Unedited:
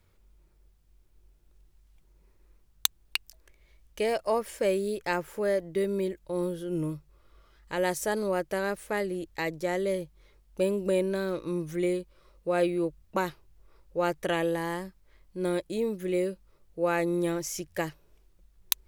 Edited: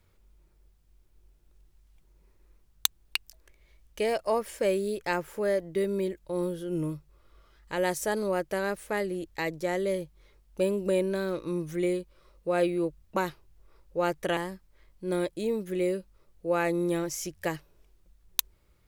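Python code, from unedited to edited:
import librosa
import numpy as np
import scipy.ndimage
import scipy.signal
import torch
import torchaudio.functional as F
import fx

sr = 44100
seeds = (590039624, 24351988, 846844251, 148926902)

y = fx.edit(x, sr, fx.cut(start_s=14.37, length_s=0.33), tone=tone)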